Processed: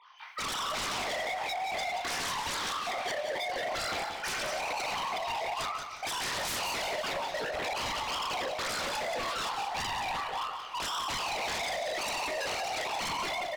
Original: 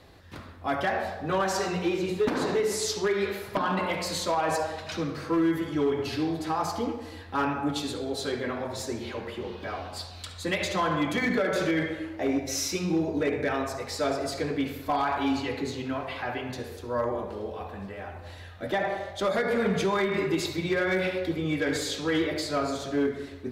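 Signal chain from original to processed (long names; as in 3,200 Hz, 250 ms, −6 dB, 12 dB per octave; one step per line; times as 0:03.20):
three sine waves on the formant tracks
low-pass filter 1,500 Hz 6 dB per octave
downward compressor 10 to 1, threshold −31 dBFS, peak gain reduction 19.5 dB
high-pass filter 290 Hz 12 dB per octave
four-comb reverb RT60 0.44 s, combs from 28 ms, DRR −5 dB
wave folding −33 dBFS
wrong playback speed 45 rpm record played at 78 rpm
echo with shifted repeats 305 ms, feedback 60%, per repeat −33 Hz, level −19 dB
feedback echo at a low word length 179 ms, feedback 35%, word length 12 bits, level −7.5 dB
level +3.5 dB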